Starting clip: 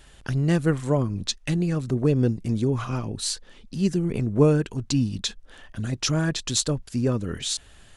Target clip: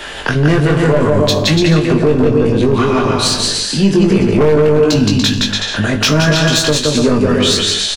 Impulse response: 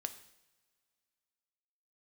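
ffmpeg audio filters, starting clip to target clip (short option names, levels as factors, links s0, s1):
-filter_complex "[0:a]acrossover=split=280 4700:gain=0.141 1 0.251[s0][s1][s2];[s0][s1][s2]amix=inputs=3:normalize=0,aecho=1:1:170|289|372.3|430.6|471.4:0.631|0.398|0.251|0.158|0.1,asoftclip=type=tanh:threshold=0.0794,acrossover=split=140[s3][s4];[s4]acompressor=threshold=0.00316:ratio=2[s5];[s3][s5]amix=inputs=2:normalize=0[s6];[1:a]atrim=start_sample=2205,asetrate=74970,aresample=44100[s7];[s6][s7]afir=irnorm=-1:irlink=0,aeval=exprs='0.0158*(abs(mod(val(0)/0.0158+3,4)-2)-1)':c=same,asplit=2[s8][s9];[s9]adelay=20,volume=0.596[s10];[s8][s10]amix=inputs=2:normalize=0,alimiter=level_in=59.6:limit=0.891:release=50:level=0:latency=1,volume=0.891"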